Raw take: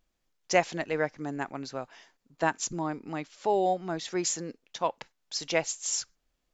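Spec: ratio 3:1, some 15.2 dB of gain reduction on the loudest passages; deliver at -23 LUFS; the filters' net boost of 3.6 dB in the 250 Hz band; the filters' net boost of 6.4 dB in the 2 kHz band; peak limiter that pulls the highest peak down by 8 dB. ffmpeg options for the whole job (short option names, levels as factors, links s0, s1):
-af "equalizer=f=250:t=o:g=5.5,equalizer=f=2000:t=o:g=7.5,acompressor=threshold=0.0158:ratio=3,volume=6.68,alimiter=limit=0.316:level=0:latency=1"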